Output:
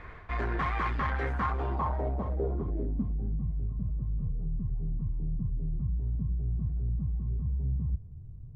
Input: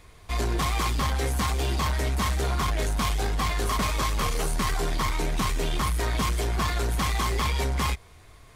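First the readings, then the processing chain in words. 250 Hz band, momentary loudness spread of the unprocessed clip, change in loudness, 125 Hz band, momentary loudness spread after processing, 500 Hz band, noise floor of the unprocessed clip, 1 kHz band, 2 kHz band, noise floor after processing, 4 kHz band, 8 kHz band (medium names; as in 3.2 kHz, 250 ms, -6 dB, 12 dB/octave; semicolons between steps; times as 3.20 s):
-5.0 dB, 2 LU, -6.0 dB, -3.0 dB, 4 LU, -7.0 dB, -51 dBFS, -7.5 dB, -9.0 dB, -45 dBFS, under -20 dB, under -35 dB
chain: reverse; compression 12:1, threshold -34 dBFS, peak gain reduction 11 dB; reverse; low-pass sweep 1.7 kHz -> 140 Hz, 1.28–3.53 s; trim +5 dB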